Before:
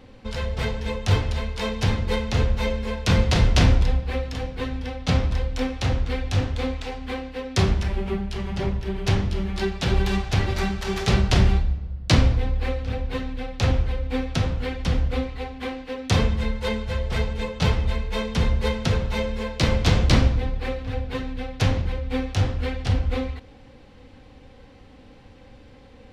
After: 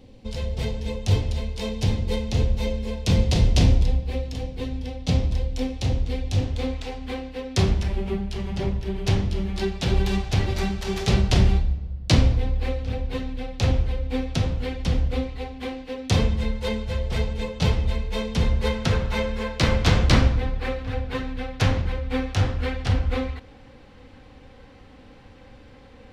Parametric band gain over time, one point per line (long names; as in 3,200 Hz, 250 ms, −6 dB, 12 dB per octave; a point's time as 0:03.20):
parametric band 1,400 Hz 1.3 octaves
0:06.30 −14 dB
0:06.75 −5.5 dB
0:18.32 −5.5 dB
0:18.97 +3 dB